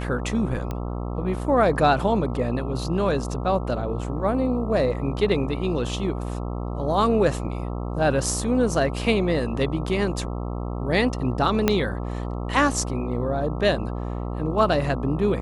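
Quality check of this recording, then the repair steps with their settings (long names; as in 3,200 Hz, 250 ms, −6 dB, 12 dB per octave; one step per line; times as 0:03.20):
mains buzz 60 Hz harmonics 22 −29 dBFS
0:00.71: click −17 dBFS
0:11.68: click −4 dBFS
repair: click removal
hum removal 60 Hz, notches 22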